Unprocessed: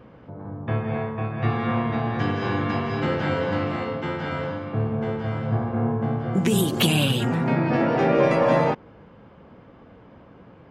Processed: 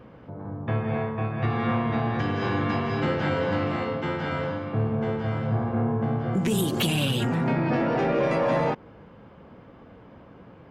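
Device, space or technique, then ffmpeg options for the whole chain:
soft clipper into limiter: -af "asoftclip=type=tanh:threshold=0.237,alimiter=limit=0.15:level=0:latency=1:release=138"

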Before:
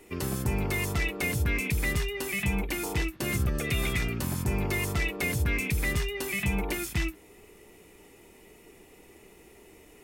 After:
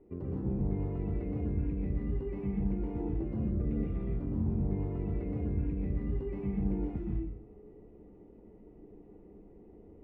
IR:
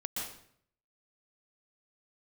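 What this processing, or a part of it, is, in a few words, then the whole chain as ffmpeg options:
television next door: -filter_complex "[0:a]acompressor=threshold=0.0282:ratio=4,lowpass=450[s0];[1:a]atrim=start_sample=2205[s1];[s0][s1]afir=irnorm=-1:irlink=0"

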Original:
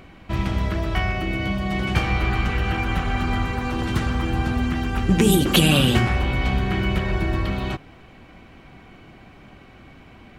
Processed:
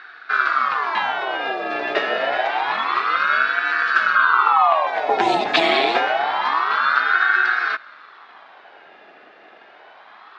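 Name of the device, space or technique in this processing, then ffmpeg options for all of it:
voice changer toy: -filter_complex "[0:a]asettb=1/sr,asplit=3[s0][s1][s2];[s0]atrim=end=4.164[s3];[s1]atrim=start=4.16:end=4.87,asetpts=PTS-STARTPTS,afade=t=in:d=0.004:c=qsin,afade=t=out:st=0.706:d=0.004:c=qsin,equalizer=f=125:t=o:w=1:g=5,equalizer=f=250:t=o:w=1:g=10,equalizer=f=500:t=o:w=1:g=-11,equalizer=f=1000:t=o:w=1:g=-4,equalizer=f=2000:t=o:w=1:g=6,equalizer=f=4000:t=o:w=1:g=-7,equalizer=f=8000:t=o:w=1:g=-5[s4];[s2]atrim=start=4.866[s5];[s3][s4]acrossfade=d=0.004:c1=hsin:c2=qsin[s6];[s6][s5]acrossfade=d=0.004:c1=qsin:c2=hsin,aeval=exprs='val(0)*sin(2*PI*990*n/s+990*0.5/0.27*sin(2*PI*0.27*n/s))':c=same,highpass=490,equalizer=f=520:t=q:w=4:g=-7,equalizer=f=940:t=q:w=4:g=-5,equalizer=f=1600:t=q:w=4:g=4,equalizer=f=3100:t=q:w=4:g=-5,lowpass=f=4500:w=0.5412,lowpass=f=4500:w=1.3066,volume=2"

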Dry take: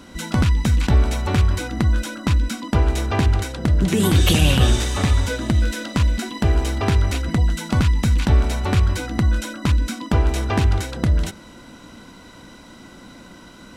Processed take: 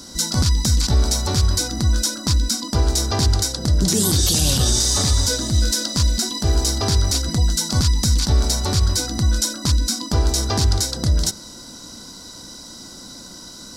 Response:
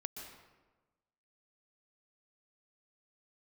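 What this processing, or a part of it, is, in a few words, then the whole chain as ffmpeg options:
over-bright horn tweeter: -af "highshelf=f=3600:t=q:w=3:g=11,alimiter=limit=0.398:level=0:latency=1:release=33"

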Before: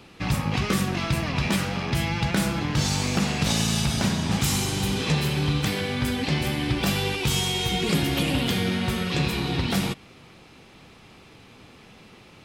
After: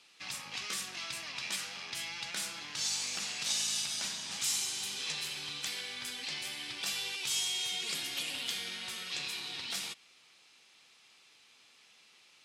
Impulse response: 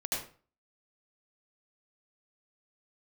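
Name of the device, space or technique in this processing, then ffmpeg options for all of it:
piezo pickup straight into a mixer: -af "lowpass=7400,aderivative"

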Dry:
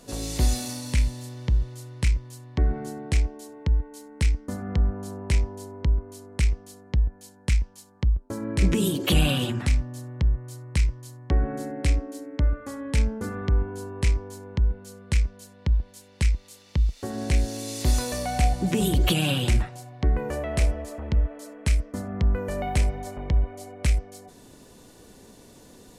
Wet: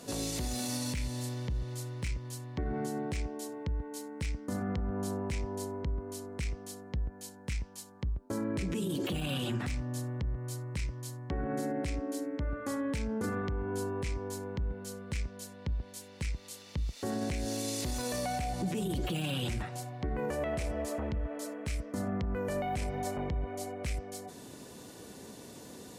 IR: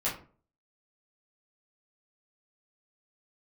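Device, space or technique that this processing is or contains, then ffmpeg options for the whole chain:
podcast mastering chain: -af "highpass=93,deesser=0.65,acompressor=threshold=0.0316:ratio=4,alimiter=level_in=1.58:limit=0.0631:level=0:latency=1:release=18,volume=0.631,volume=1.33" -ar 48000 -c:a libmp3lame -b:a 96k

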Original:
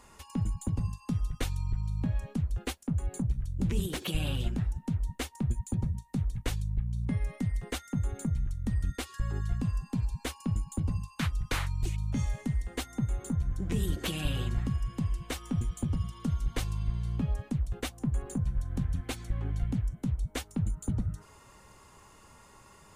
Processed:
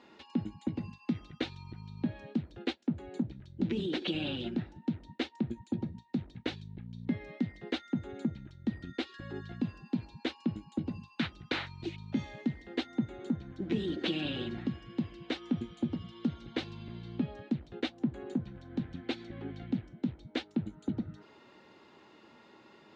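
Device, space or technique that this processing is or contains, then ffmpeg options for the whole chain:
kitchen radio: -filter_complex "[0:a]highpass=220,equalizer=f=230:t=q:w=4:g=6,equalizer=f=330:t=q:w=4:g=9,equalizer=f=1100:t=q:w=4:g=-8,equalizer=f=3900:t=q:w=4:g=5,lowpass=f=4200:w=0.5412,lowpass=f=4200:w=1.3066,asettb=1/sr,asplit=3[s0][s1][s2];[s0]atrim=end=0.604[s3];[s1]atrim=start=0.6:end=1.33,asetpts=PTS-STARTPTS,afade=t=in:d=0.004:c=qsin,afade=t=out:st=0.726:d=0.004:c=qsin,equalizer=f=2100:w=3.2:g=8[s4];[s2]atrim=start=1.326[s5];[s3][s4]acrossfade=d=0.004:c1=hsin:c2=qsin[s6];[s6][s5]acrossfade=d=0.004:c1=qsin:c2=hsin"

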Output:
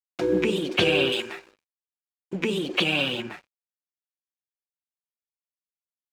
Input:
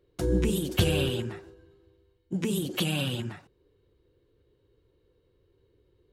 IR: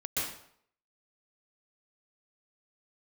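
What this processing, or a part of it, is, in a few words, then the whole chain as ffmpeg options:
pocket radio on a weak battery: -filter_complex "[0:a]asettb=1/sr,asplit=3[s0][s1][s2];[s0]atrim=end=1.124[s3];[s1]atrim=start=1.12:end=2.33,asetpts=PTS-STARTPTS,afade=t=in:d=0.004:c=qsin,afade=t=out:st=1.206:d=0.004:c=qsin,aemphasis=mode=production:type=riaa[s4];[s2]atrim=start=2.326[s5];[s3][s4]acrossfade=d=0.004:c1=hsin:c2=qsin[s6];[s6][s5]acrossfade=d=0.004:c1=qsin:c2=hsin,highpass=300,lowpass=4000,aeval=exprs='sgn(val(0))*max(abs(val(0))-0.00178,0)':c=same,equalizer=f=2400:t=o:w=0.28:g=8,volume=2.37"

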